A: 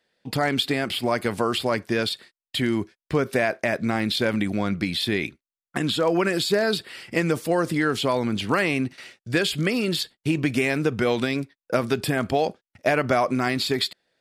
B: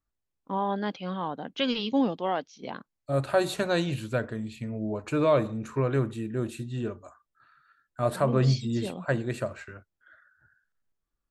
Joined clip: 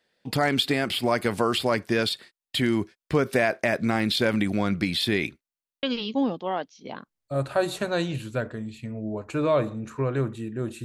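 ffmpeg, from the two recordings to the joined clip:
-filter_complex "[0:a]apad=whole_dur=10.84,atrim=end=10.84,asplit=7[s0][s1][s2][s3][s4][s5][s6];[s0]atrim=end=5.532[s7];[s1]atrim=start=5.478:end=5.532[s8];[s2]atrim=start=5.478:end=5.532[s9];[s3]atrim=start=5.478:end=5.532[s10];[s4]atrim=start=5.478:end=5.532[s11];[s5]atrim=start=5.478:end=5.532[s12];[s6]atrim=start=5.478:end=5.532[s13];[1:a]atrim=start=1.608:end=6.62[s14];[s7][s8]acrossfade=d=0.004:c1=hsin:c2=hsin[s15];[s15][s9]acrossfade=d=0.004:c1=hsin:c2=hsin[s16];[s16][s10]acrossfade=d=0.004:c1=hsin:c2=hsin[s17];[s17][s11]acrossfade=d=0.004:c1=hsin:c2=hsin[s18];[s18][s12]acrossfade=d=0.004:c1=hsin:c2=hsin[s19];[s19][s13]acrossfade=d=0.004:c1=hsin:c2=hsin[s20];[s20][s14]acrossfade=d=0.004:c1=hsin:c2=hsin"

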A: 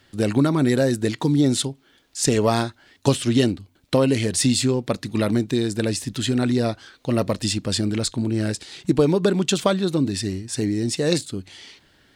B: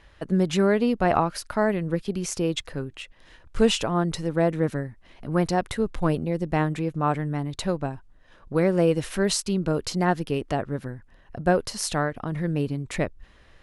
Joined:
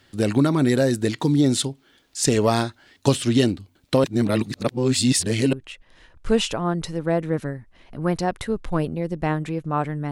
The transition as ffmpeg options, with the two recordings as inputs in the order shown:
-filter_complex "[0:a]apad=whole_dur=10.11,atrim=end=10.11,asplit=2[s0][s1];[s0]atrim=end=4.042[s2];[s1]atrim=start=4.038:end=5.532,asetpts=PTS-STARTPTS,areverse[s3];[1:a]atrim=start=2.828:end=7.41[s4];[s2][s3]acrossfade=d=0.004:c1=hsin:c2=hsin[s5];[s5][s4]acrossfade=d=0.004:c1=hsin:c2=hsin"

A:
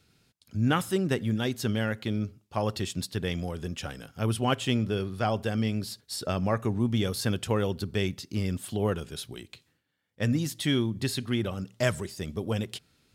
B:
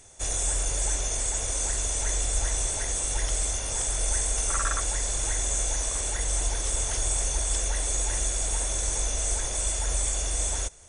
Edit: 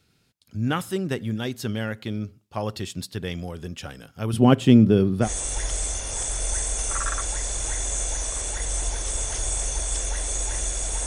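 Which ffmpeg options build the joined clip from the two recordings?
-filter_complex "[0:a]asettb=1/sr,asplit=3[s0][s1][s2];[s0]atrim=end=4.334[s3];[s1]atrim=start=4.33:end=5.29,asetpts=PTS-STARTPTS,afade=t=in:d=0.004:c=qsin,afade=t=out:st=0.956:d=0.004:c=qsin,equalizer=f=220:t=o:w=2.9:g=14.5[s4];[s2]atrim=start=5.286[s5];[s3][s4]acrossfade=d=0.004:c1=hsin:c2=qsin[s6];[s6][s5]acrossfade=d=0.004:c1=qsin:c2=hsin,apad=whole_dur=11.06,atrim=end=11.06,atrim=end=5.29,asetpts=PTS-STARTPTS[s7];[1:a]atrim=start=2.8:end=8.65,asetpts=PTS-STARTPTS[s8];[s7][s8]acrossfade=d=0.08:c1=tri:c2=tri"

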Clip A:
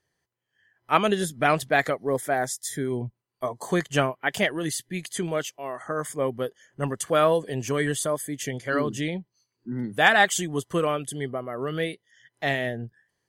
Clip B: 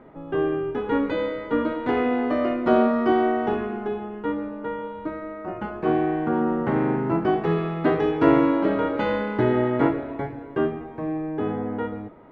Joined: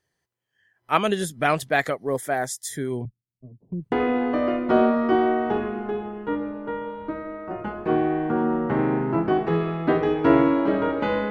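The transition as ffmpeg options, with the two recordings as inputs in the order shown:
-filter_complex "[0:a]asettb=1/sr,asplit=3[s0][s1][s2];[s0]atrim=end=3.054[s3];[s1]atrim=start=3.05:end=3.92,asetpts=PTS-STARTPTS,afade=t=in:d=0.004:c=qsin,afade=t=out:st=0.866:d=0.004:c=qsin,acrossover=split=250[s4][s5];[s5]adelay=670[s6];[s4][s6]amix=inputs=2:normalize=0,atrim=end_sample=38367[s7];[s2]atrim=start=3.916[s8];[s3][s7]acrossfade=d=0.004:c1=hsin:c2=qsin[s9];[s9][s8]acrossfade=d=0.004:c1=qsin:c2=hsin,apad=whole_dur=11.3,atrim=end=11.3,atrim=end=3.922[s10];[1:a]atrim=start=1.888:end=9.27[s11];[s10][s11]acrossfade=d=0.004:c1=hsin:c2=hsin"

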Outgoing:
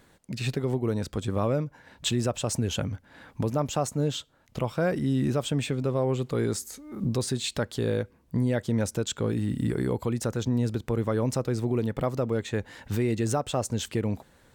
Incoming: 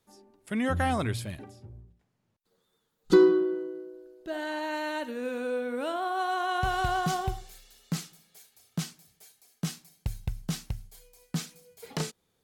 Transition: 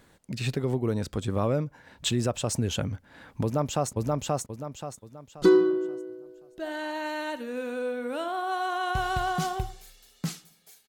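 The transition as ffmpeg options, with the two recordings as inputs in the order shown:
-filter_complex "[0:a]apad=whole_dur=10.88,atrim=end=10.88,atrim=end=3.932[s0];[1:a]atrim=start=1.608:end=8.56[s1];[s0][s1]acrossfade=d=0.004:c1=hsin:c2=hsin,asplit=2[s2][s3];[s3]afade=t=in:st=3.43:d=0.01,afade=t=out:st=3.93:d=0.01,aecho=0:1:530|1060|1590|2120|2650:0.891251|0.311938|0.109178|0.0382124|0.0133743[s4];[s2][s4]amix=inputs=2:normalize=0"

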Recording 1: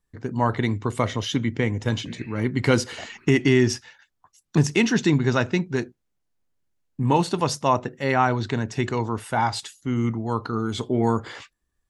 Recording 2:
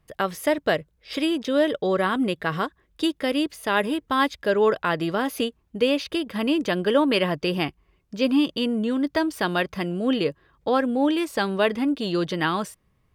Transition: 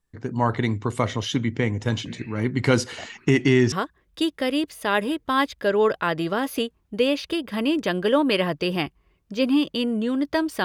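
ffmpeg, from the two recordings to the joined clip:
-filter_complex "[0:a]apad=whole_dur=10.64,atrim=end=10.64,atrim=end=3.722[s0];[1:a]atrim=start=2.538:end=9.46[s1];[s0][s1]acrossfade=d=0.004:c1=hsin:c2=hsin"

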